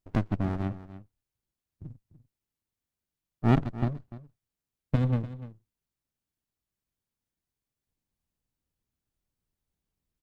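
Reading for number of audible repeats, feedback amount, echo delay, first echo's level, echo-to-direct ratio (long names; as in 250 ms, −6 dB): 1, repeats not evenly spaced, 295 ms, −15.0 dB, −15.0 dB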